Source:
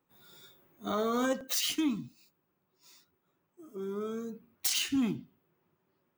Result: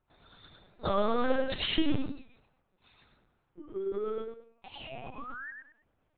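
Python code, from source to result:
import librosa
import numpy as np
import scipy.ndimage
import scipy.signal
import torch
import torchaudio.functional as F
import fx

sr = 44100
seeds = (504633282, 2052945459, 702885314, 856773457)

p1 = scipy.signal.sosfilt(scipy.signal.butter(4, 240.0, 'highpass', fs=sr, output='sos'), x)
p2 = fx.peak_eq(p1, sr, hz=670.0, db=2.5, octaves=0.77)
p3 = fx.notch(p2, sr, hz=970.0, q=26.0)
p4 = fx.transient(p3, sr, attack_db=7, sustain_db=11)
p5 = fx.spec_paint(p4, sr, seeds[0], shape='rise', start_s=4.78, length_s=0.73, low_hz=540.0, high_hz=1900.0, level_db=-43.0)
p6 = fx.vowel_filter(p5, sr, vowel='a', at=(4.21, 5.18), fade=0.02)
p7 = p6 + fx.echo_feedback(p6, sr, ms=106, feedback_pct=24, wet_db=-3.5, dry=0)
p8 = fx.lpc_vocoder(p7, sr, seeds[1], excitation='pitch_kept', order=8)
y = fx.record_warp(p8, sr, rpm=45.0, depth_cents=100.0)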